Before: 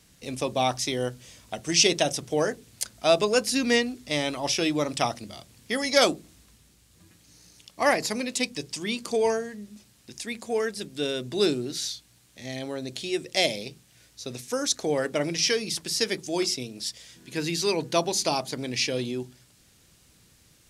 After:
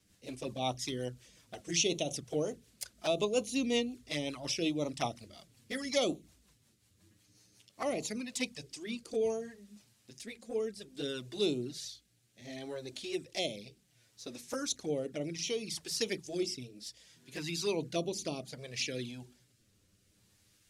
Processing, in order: touch-sensitive flanger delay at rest 10.7 ms, full sweep at -22 dBFS; rotary cabinet horn 5.5 Hz, later 0.65 Hz, at 7.62 s; trim -5 dB

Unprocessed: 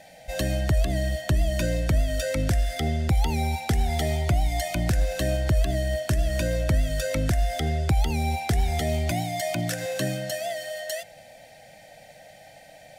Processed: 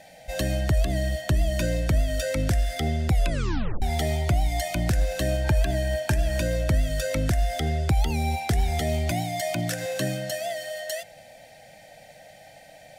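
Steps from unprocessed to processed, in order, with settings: 3.11 s: tape stop 0.71 s; 5.44–6.39 s: small resonant body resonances 880/1600/2400 Hz, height 13 dB

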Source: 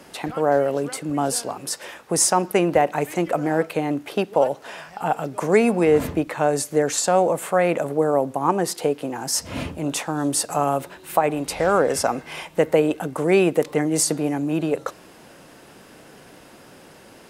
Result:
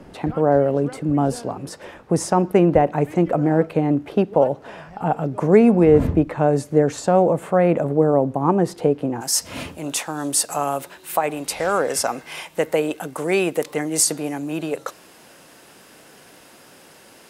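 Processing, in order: tilt EQ -3.5 dB/octave, from 9.20 s +1.5 dB/octave; trim -1 dB

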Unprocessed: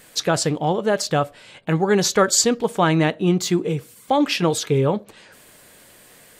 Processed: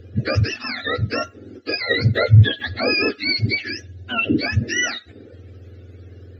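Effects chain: spectrum inverted on a logarithmic axis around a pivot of 890 Hz; boxcar filter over 5 samples; static phaser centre 400 Hz, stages 4; trim +5 dB

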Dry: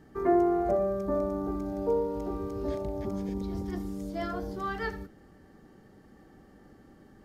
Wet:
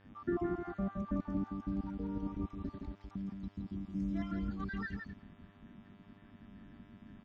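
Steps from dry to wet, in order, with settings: random holes in the spectrogram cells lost 47%; FFT filter 150 Hz 0 dB, 230 Hz +5 dB, 490 Hz -22 dB, 1.4 kHz -4 dB; 2.66–3.95 s: compression 2.5:1, threshold -43 dBFS, peak gain reduction 9 dB; mains buzz 100 Hz, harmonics 37, -65 dBFS -4 dB/octave; distance through air 150 m; delay 167 ms -5.5 dB; trim +1 dB

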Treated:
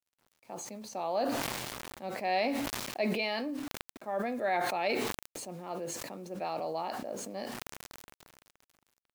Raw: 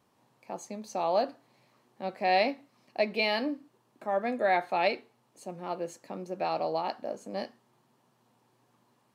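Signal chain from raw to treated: bit crusher 10-bit; decay stretcher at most 25 dB/s; trim -5.5 dB

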